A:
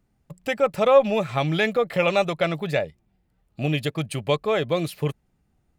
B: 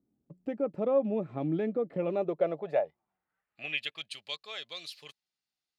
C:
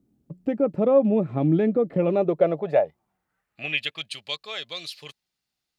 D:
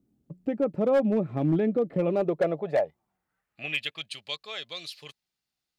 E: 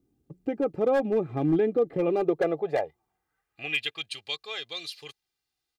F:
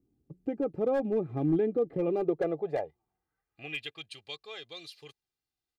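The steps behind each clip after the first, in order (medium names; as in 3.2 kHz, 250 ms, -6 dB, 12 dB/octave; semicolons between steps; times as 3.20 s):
band-pass sweep 290 Hz -> 4.4 kHz, 2.07–4.22 s
bass shelf 220 Hz +8 dB; trim +7 dB
hard clipper -14 dBFS, distortion -18 dB; trim -3.5 dB
comb 2.5 ms, depth 56%
tilt shelf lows +4 dB, about 670 Hz; trim -5.5 dB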